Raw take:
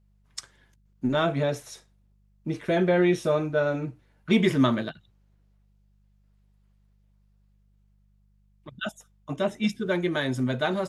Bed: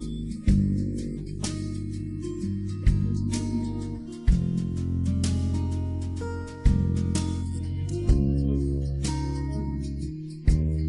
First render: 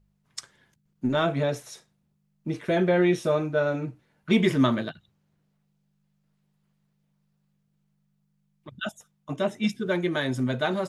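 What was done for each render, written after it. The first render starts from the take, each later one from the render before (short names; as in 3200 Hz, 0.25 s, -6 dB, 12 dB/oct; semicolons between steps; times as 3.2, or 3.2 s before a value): de-hum 50 Hz, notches 2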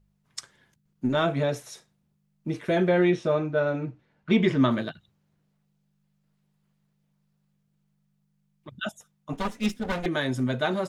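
3.1–4.71 air absorption 110 m; 9.33–10.06 minimum comb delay 4.1 ms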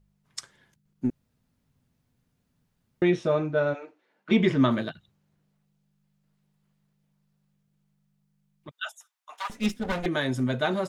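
1.1–3.02 room tone; 3.73–4.3 HPF 550 Hz -> 220 Hz 24 dB/oct; 8.71–9.5 inverse Chebyshev high-pass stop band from 190 Hz, stop band 70 dB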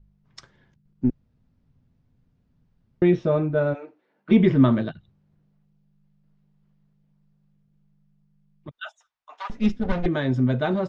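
LPF 6000 Hz 24 dB/oct; tilt -2.5 dB/oct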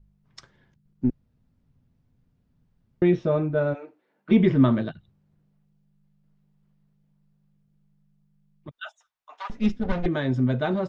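gain -1.5 dB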